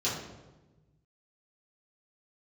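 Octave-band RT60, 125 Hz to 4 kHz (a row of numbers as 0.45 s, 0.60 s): 2.1 s, 1.5 s, 1.3 s, 1.0 s, 0.85 s, 0.75 s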